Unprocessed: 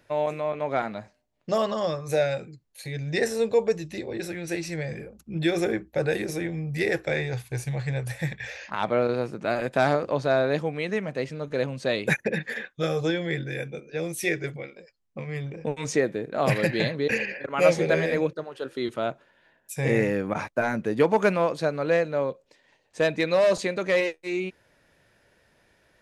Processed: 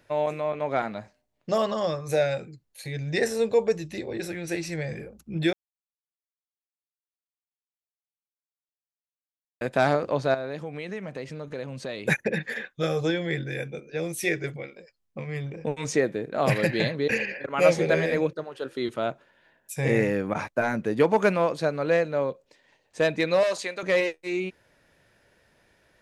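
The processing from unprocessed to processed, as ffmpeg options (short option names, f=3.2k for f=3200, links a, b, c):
-filter_complex "[0:a]asettb=1/sr,asplit=3[a][b][c];[a]atrim=end=10.344[d];[b]atrim=start=10.34:end=12.07,asetpts=PTS-STARTPTS,afade=t=in:d=0.004:c=qsin,afade=t=out:st=1.726:d=0.004:c=qsin,acompressor=threshold=-32dB:ratio=3:attack=3.2:release=140:knee=1:detection=peak[e];[c]atrim=start=12.066[f];[d][e]acrossfade=d=0.004:c1=hsin:c2=qsin[g];[g][f]acrossfade=d=0.004:c1=qsin:c2=hsin,asettb=1/sr,asplit=3[h][i][j];[h]atrim=end=23.434[k];[i]atrim=start=23.43:end=23.83,asetpts=PTS-STARTPTS,afade=t=in:d=0.004:c=qsin,afade=t=out:st=0.396:d=0.004:c=qsin,highpass=f=950:p=1[l];[j]atrim=start=23.826[m];[k][l]acrossfade=d=0.004:c1=hsin:c2=qsin[n];[n][m]acrossfade=d=0.004:c1=qsin:c2=hsin,asplit=3[o][p][q];[o]atrim=end=5.53,asetpts=PTS-STARTPTS,afade=t=out:st=5.526:d=0.004:c=hsin[r];[p]atrim=start=5.53:end=9.61,asetpts=PTS-STARTPTS,volume=0[s];[q]atrim=start=9.61,asetpts=PTS-STARTPTS,afade=t=in:d=0.004:c=hsin[t];[r][s][t]concat=n=3:v=0:a=1"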